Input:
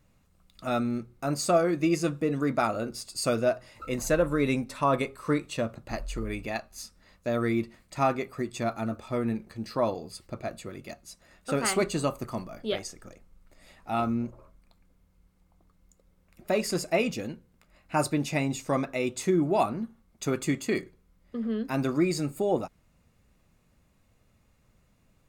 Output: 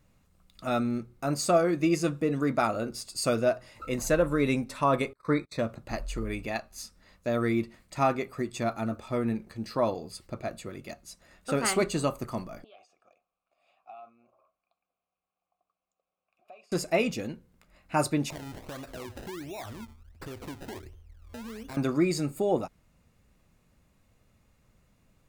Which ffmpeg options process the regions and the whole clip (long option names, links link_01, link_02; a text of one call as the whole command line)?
ffmpeg -i in.wav -filter_complex "[0:a]asettb=1/sr,asplit=3[link_01][link_02][link_03];[link_01]atrim=end=5.134[link_04];[link_02]atrim=start=5.13:end=5.59,asetpts=PTS-STARTPTS,afade=type=in:duration=0.004:curve=qsin,afade=type=out:start_time=0.456:duration=0.004:curve=qsin,agate=range=-29dB:threshold=-43dB:ratio=16:release=100:detection=peak,asuperstop=centerf=3000:order=12:qfactor=2.8,highshelf=frequency=5000:width_type=q:width=1.5:gain=-7[link_05];[link_03]atrim=start=5.586[link_06];[link_04][link_05]acrossfade=duration=0.004:curve1=hsin:curve2=qsin[link_07];[link_07][link_06]acrossfade=duration=0.004:curve1=qsin:curve2=hsin,asettb=1/sr,asplit=3[link_08][link_09][link_10];[link_08]atrim=end=12.644[link_11];[link_09]atrim=start=12.64:end=16.72,asetpts=PTS-STARTPTS,afade=type=in:duration=0.004:curve=qsin,afade=type=out:start_time=4.076:duration=0.004:curve=qsin,tiltshelf=frequency=1200:gain=-4,acompressor=threshold=-36dB:ratio=12:attack=3.2:release=140:knee=1:detection=peak,asplit=3[link_12][link_13][link_14];[link_12]bandpass=frequency=730:width_type=q:width=8,volume=0dB[link_15];[link_13]bandpass=frequency=1090:width_type=q:width=8,volume=-6dB[link_16];[link_14]bandpass=frequency=2440:width_type=q:width=8,volume=-9dB[link_17];[link_15][link_16][link_17]amix=inputs=3:normalize=0[link_18];[link_10]atrim=start=16.716[link_19];[link_11][link_18]acrossfade=duration=0.004:curve1=hsin:curve2=qsin[link_20];[link_20][link_19]acrossfade=duration=0.004:curve1=qsin:curve2=hsin,asettb=1/sr,asplit=3[link_21][link_22][link_23];[link_21]atrim=end=18.304[link_24];[link_22]atrim=start=18.3:end=21.77,asetpts=PTS-STARTPTS,afade=type=in:duration=0.004:curve=qsin,afade=type=out:start_time=3.466:duration=0.004:curve=qsin,lowshelf=frequency=120:width_type=q:width=3:gain=10.5,acrusher=samples=27:mix=1:aa=0.000001:lfo=1:lforange=27:lforate=1.4,acompressor=threshold=-38dB:ratio=5:attack=3.2:release=140:knee=1:detection=peak[link_25];[link_23]atrim=start=21.766[link_26];[link_24][link_25]acrossfade=duration=0.004:curve1=hsin:curve2=qsin[link_27];[link_27][link_26]acrossfade=duration=0.004:curve1=qsin:curve2=hsin" out.wav